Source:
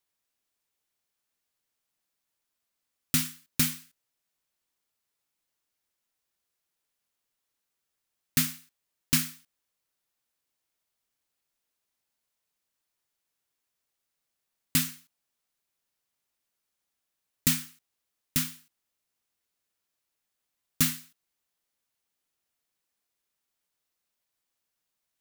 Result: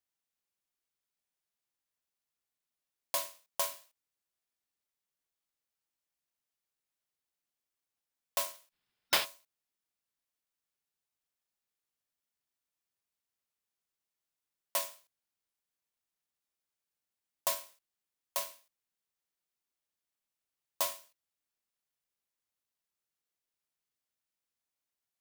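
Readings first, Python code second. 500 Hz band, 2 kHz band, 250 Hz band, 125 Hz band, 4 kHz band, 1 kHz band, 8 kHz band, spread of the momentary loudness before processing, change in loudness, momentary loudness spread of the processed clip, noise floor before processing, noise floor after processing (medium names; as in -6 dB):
+11.5 dB, -4.5 dB, -26.0 dB, -30.5 dB, -4.0 dB, +7.5 dB, -8.0 dB, 11 LU, -7.0 dB, 12 LU, -84 dBFS, under -85 dBFS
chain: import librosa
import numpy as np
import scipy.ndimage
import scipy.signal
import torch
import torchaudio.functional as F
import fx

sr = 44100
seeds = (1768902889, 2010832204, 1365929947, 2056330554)

y = fx.spec_box(x, sr, start_s=8.72, length_s=0.53, low_hz=570.0, high_hz=4600.0, gain_db=12)
y = y * np.sin(2.0 * np.pi * 820.0 * np.arange(len(y)) / sr)
y = y * 10.0 ** (-5.0 / 20.0)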